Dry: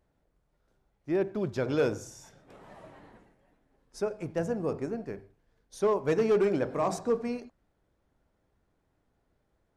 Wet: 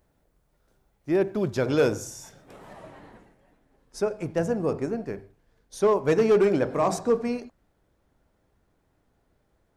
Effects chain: high shelf 8000 Hz +9 dB, from 2.73 s +2.5 dB; gain +5 dB

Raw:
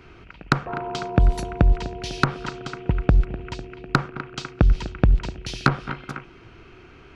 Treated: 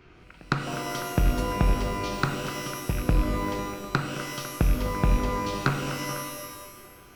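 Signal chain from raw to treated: rattling part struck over -23 dBFS, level -22 dBFS; shimmer reverb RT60 1.3 s, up +12 st, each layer -2 dB, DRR 6 dB; gain -6.5 dB

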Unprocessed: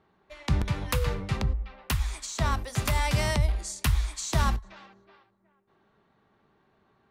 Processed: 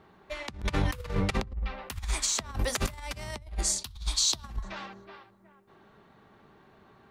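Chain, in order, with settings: 3.78–4.44 graphic EQ 250/500/2000/4000/8000 Hz -5/-7/-11/+10/-4 dB; negative-ratio compressor -33 dBFS, ratio -0.5; gain +2.5 dB

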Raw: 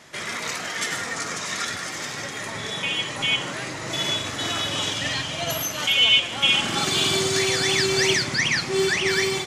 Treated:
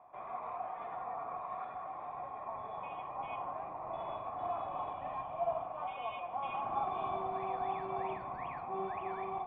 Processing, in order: octaver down 1 oct, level -3 dB; vocal tract filter a; de-hum 99.03 Hz, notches 33; gain +5 dB

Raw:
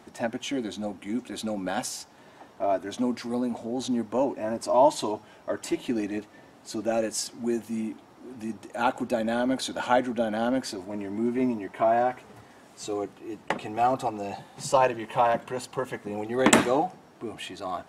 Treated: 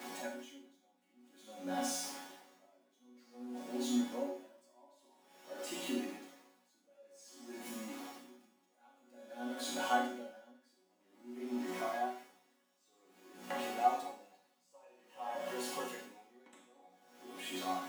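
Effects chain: zero-crossing step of -30 dBFS; HPF 270 Hz 12 dB/oct; resonator bank F#3 sus4, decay 0.3 s; Schroeder reverb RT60 0.64 s, combs from 29 ms, DRR 1 dB; dB-linear tremolo 0.51 Hz, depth 33 dB; gain +5 dB

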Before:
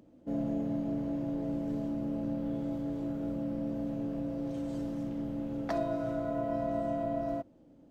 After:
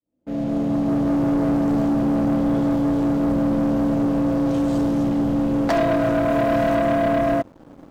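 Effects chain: opening faded in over 1.22 s; 6.3–6.75 high shelf 4600 Hz +10 dB; sample leveller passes 3; gain +7 dB

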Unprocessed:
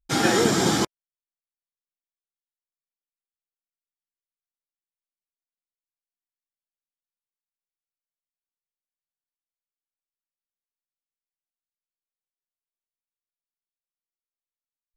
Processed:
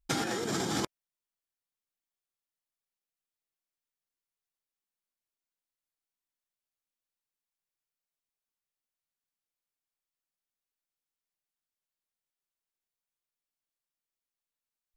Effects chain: negative-ratio compressor -27 dBFS, ratio -1; gain -5 dB

